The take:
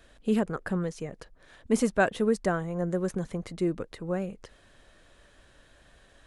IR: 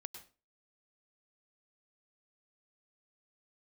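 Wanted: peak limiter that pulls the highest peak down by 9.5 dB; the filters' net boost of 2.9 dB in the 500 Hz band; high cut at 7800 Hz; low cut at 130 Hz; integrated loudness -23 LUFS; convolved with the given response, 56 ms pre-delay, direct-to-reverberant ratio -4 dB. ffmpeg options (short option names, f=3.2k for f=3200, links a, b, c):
-filter_complex "[0:a]highpass=130,lowpass=7.8k,equalizer=f=500:t=o:g=3.5,alimiter=limit=-18.5dB:level=0:latency=1,asplit=2[a][b];[1:a]atrim=start_sample=2205,adelay=56[c];[b][c]afir=irnorm=-1:irlink=0,volume=8.5dB[d];[a][d]amix=inputs=2:normalize=0,volume=2dB"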